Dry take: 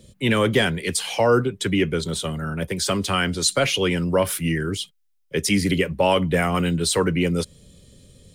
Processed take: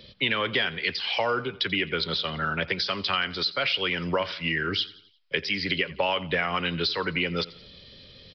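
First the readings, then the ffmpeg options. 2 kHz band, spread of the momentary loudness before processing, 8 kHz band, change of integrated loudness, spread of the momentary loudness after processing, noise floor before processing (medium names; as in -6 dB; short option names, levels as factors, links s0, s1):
0.0 dB, 8 LU, -27.0 dB, -5.0 dB, 4 LU, -63 dBFS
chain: -af "tiltshelf=f=630:g=-8.5,acompressor=threshold=0.0501:ratio=6,aecho=1:1:87|174|261|348:0.106|0.0498|0.0234|0.011,aresample=11025,aresample=44100,volume=1.41"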